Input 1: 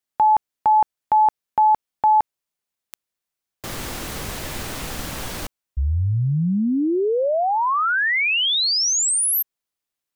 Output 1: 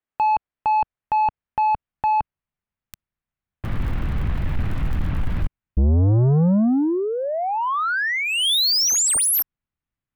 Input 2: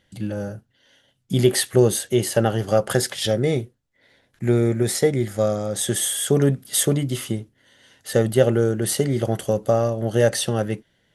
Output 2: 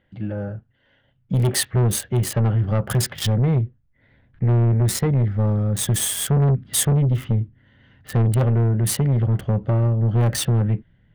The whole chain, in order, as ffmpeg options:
ffmpeg -i in.wav -filter_complex "[0:a]asubboost=boost=7.5:cutoff=170,acrossover=split=2800[link_01][link_02];[link_01]asoftclip=type=tanh:threshold=-14.5dB[link_03];[link_02]acrusher=bits=3:mix=0:aa=0.5[link_04];[link_03][link_04]amix=inputs=2:normalize=0" out.wav

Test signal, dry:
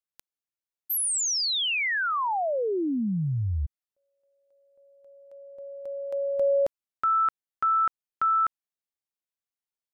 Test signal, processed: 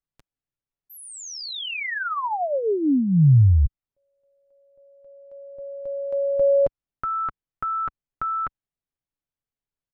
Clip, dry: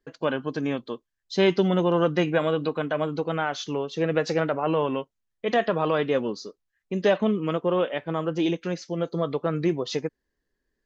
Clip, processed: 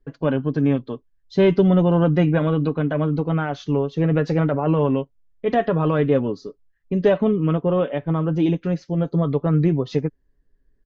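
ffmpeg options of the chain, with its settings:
ffmpeg -i in.wav -af "aemphasis=mode=reproduction:type=riaa,aecho=1:1:7.1:0.4" out.wav

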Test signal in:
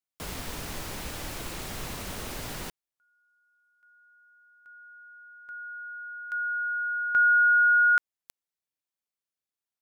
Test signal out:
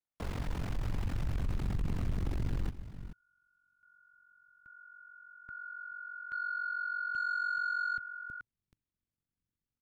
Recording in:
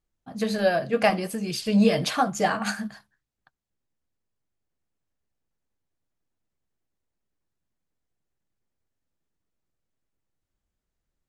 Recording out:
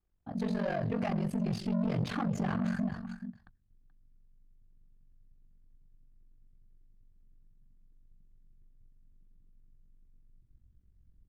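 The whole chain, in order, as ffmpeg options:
ffmpeg -i in.wav -af "asubboost=boost=10.5:cutoff=200,aecho=1:1:429:0.112,acompressor=threshold=-26dB:ratio=3:attack=3.7:release=40:detection=peak,asoftclip=type=tanh:threshold=-28.5dB,aeval=exprs='val(0)*sin(2*PI*23*n/s)':channel_layout=same,lowpass=frequency=1300:poles=1,equalizer=frequency=110:width=7:gain=2.5,volume=3.5dB" out.wav

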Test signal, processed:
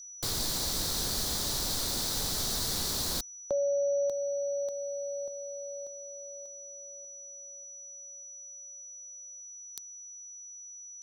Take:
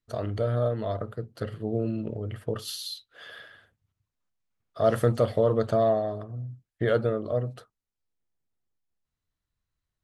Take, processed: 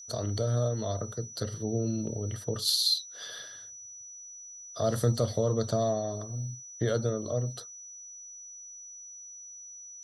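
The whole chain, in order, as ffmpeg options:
ffmpeg -i in.wav -filter_complex "[0:a]acrossover=split=230[link_01][link_02];[link_02]acompressor=threshold=-37dB:ratio=1.5[link_03];[link_01][link_03]amix=inputs=2:normalize=0,aeval=exprs='val(0)+0.002*sin(2*PI*5900*n/s)':channel_layout=same,highshelf=frequency=3300:width_type=q:width=3:gain=7.5" out.wav

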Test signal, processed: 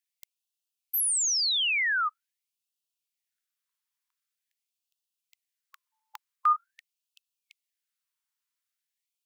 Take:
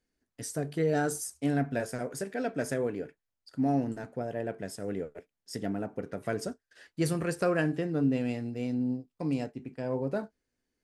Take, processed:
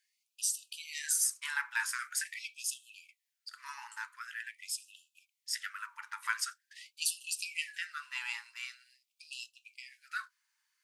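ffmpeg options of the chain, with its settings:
ffmpeg -i in.wav -af "afftfilt=real='re*gte(b*sr/1024,840*pow(2600/840,0.5+0.5*sin(2*PI*0.45*pts/sr)))':imag='im*gte(b*sr/1024,840*pow(2600/840,0.5+0.5*sin(2*PI*0.45*pts/sr)))':win_size=1024:overlap=0.75,volume=8dB" out.wav

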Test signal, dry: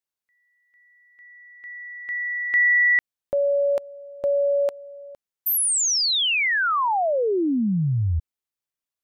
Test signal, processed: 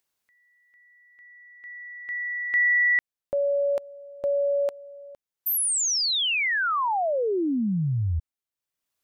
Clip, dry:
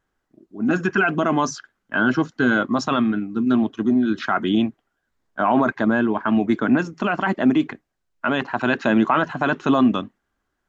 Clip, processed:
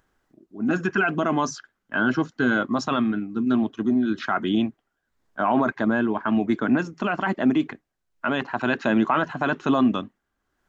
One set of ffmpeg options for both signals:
ffmpeg -i in.wav -af "acompressor=mode=upward:threshold=-46dB:ratio=1.5:attack=12:release=408:knee=2.83:detection=peak,volume=-3dB" out.wav

